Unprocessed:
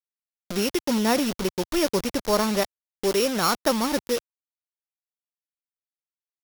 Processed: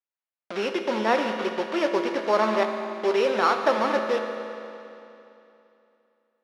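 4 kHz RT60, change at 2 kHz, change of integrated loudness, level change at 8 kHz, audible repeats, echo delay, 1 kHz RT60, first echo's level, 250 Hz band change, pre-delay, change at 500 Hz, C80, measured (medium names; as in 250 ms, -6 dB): 2.7 s, +3.0 dB, 0.0 dB, under -15 dB, no echo, no echo, 2.9 s, no echo, -4.5 dB, 6 ms, +2.0 dB, 6.0 dB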